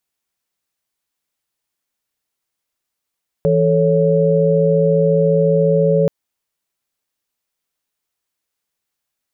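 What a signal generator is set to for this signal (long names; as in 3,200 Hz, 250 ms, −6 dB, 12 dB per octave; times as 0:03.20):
held notes E3/A4/C#5 sine, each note −15.5 dBFS 2.63 s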